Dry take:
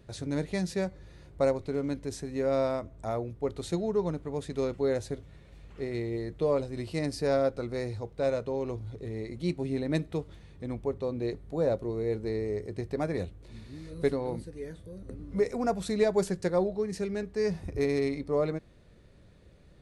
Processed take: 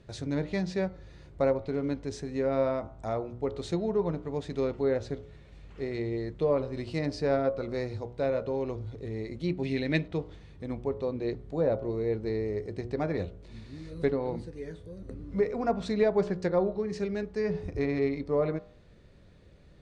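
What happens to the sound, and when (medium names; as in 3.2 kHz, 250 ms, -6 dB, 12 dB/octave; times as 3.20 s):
9.63–10.08 s: resonant high shelf 1.6 kHz +8.5 dB, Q 1.5
whole clip: low-pass that closes with the level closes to 2.9 kHz, closed at -24 dBFS; low-pass 7.3 kHz 12 dB/octave; de-hum 60.59 Hz, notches 24; trim +1 dB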